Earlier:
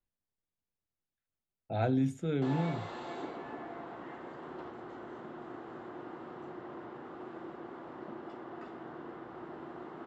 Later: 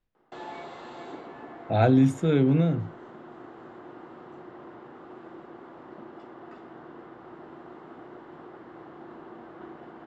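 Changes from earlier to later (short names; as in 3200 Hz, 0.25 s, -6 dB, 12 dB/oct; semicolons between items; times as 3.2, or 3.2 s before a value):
speech +10.0 dB; background: entry -2.10 s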